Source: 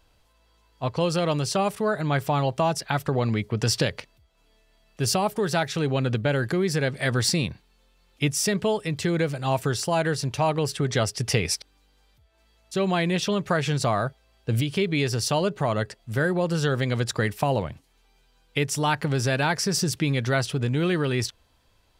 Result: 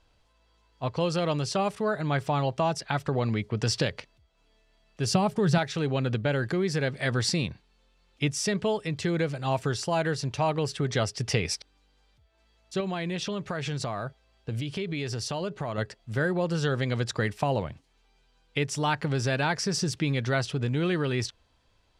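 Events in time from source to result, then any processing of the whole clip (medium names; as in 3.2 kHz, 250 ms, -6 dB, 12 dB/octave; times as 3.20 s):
5.14–5.58 s: peaking EQ 130 Hz +13 dB 1.2 oct
12.80–15.78 s: compression 4:1, threshold -25 dBFS
whole clip: low-pass 7.4 kHz 12 dB/octave; trim -3 dB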